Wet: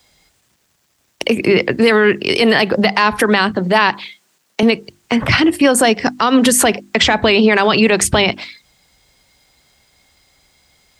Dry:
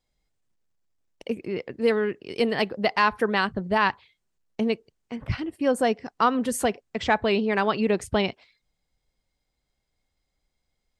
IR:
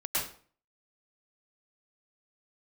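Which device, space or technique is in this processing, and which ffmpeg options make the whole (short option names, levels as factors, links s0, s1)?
mastering chain: -filter_complex "[0:a]highpass=57,equalizer=f=480:t=o:w=0.32:g=-2.5,acrossover=split=240|690|2300[s0][s1][s2][s3];[s0]acompressor=threshold=0.0224:ratio=4[s4];[s1]acompressor=threshold=0.0398:ratio=4[s5];[s2]acompressor=threshold=0.0282:ratio=4[s6];[s3]acompressor=threshold=0.02:ratio=4[s7];[s4][s5][s6][s7]amix=inputs=4:normalize=0,acompressor=threshold=0.0316:ratio=2,tiltshelf=f=860:g=-3.5,alimiter=level_in=21.1:limit=0.891:release=50:level=0:latency=1,bandreject=f=50:t=h:w=6,bandreject=f=100:t=h:w=6,bandreject=f=150:t=h:w=6,bandreject=f=200:t=h:w=6,bandreject=f=250:t=h:w=6,bandreject=f=300:t=h:w=6,bandreject=f=350:t=h:w=6,asettb=1/sr,asplit=3[s8][s9][s10];[s8]atrim=end=3.514[s11];[s9]atrim=start=3.51:end=4.63,asetpts=PTS-STARTPTS,afade=t=in:d=0.004:c=qsin,afade=t=out:st=1.116:d=0.004:c=qsin,highpass=190[s12];[s10]atrim=start=4.626[s13];[s11][s12]acrossfade=d=0.004:c1=hsin:c2=qsin[s14];[s14][s13]acrossfade=d=0.004:c1=qsin:c2=hsin,volume=0.794"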